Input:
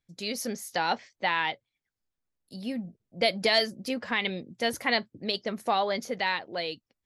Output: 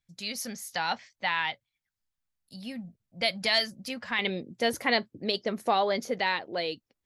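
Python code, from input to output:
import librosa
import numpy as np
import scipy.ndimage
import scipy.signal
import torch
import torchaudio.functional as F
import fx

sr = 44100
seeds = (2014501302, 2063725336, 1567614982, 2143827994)

y = fx.peak_eq(x, sr, hz=390.0, db=fx.steps((0.0, -11.5), (4.19, 3.0)), octaves=1.3)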